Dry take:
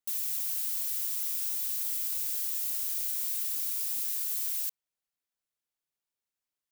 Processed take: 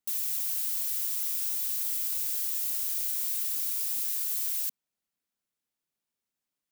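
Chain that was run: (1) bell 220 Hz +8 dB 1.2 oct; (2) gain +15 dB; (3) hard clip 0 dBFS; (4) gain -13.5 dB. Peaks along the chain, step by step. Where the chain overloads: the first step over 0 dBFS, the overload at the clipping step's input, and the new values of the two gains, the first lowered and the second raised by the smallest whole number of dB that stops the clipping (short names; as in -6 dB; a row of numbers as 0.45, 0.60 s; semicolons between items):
-19.0, -4.0, -4.0, -17.5 dBFS; no overload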